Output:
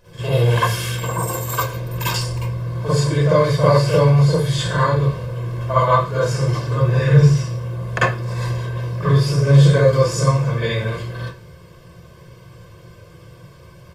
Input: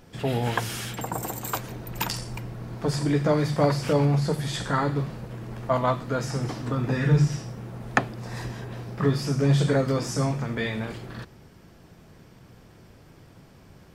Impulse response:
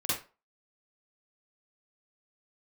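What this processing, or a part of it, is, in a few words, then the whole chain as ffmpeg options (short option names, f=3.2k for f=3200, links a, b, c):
microphone above a desk: -filter_complex "[0:a]aecho=1:1:1.9:0.89[a];[1:a]atrim=start_sample=2205[b];[a][b]afir=irnorm=-1:irlink=0,volume=-2dB"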